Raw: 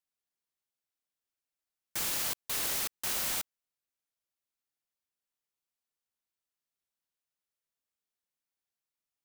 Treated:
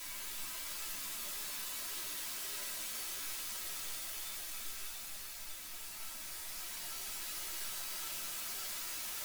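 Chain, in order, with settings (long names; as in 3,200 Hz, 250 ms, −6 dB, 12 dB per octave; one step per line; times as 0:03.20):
high-pass filter 1,100 Hz 6 dB per octave
tube saturation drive 39 dB, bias 0.4
extreme stretch with random phases 12×, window 0.50 s, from 0:02.49
convolution reverb RT60 0.70 s, pre-delay 3 ms, DRR 0 dB
string-ensemble chorus
level +1 dB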